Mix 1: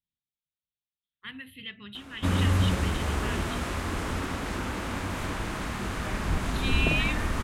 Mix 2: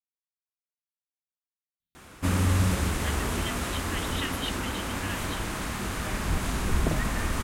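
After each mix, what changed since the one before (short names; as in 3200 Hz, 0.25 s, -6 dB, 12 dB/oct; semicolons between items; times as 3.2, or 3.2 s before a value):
speech: entry +1.80 s; master: add high shelf 6700 Hz +10.5 dB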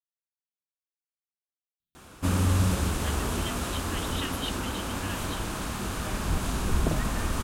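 master: add bell 2000 Hz -6.5 dB 0.46 oct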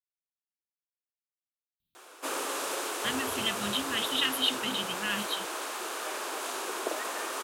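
speech +9.0 dB; background: add steep high-pass 360 Hz 36 dB/oct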